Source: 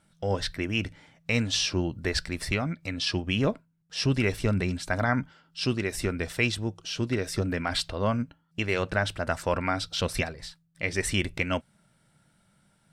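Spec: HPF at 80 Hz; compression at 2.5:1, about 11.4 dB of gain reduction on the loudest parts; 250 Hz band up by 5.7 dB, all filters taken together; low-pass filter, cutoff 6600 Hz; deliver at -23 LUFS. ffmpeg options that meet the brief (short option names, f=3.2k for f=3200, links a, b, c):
-af "highpass=80,lowpass=6.6k,equalizer=f=250:t=o:g=7,acompressor=threshold=-35dB:ratio=2.5,volume=13dB"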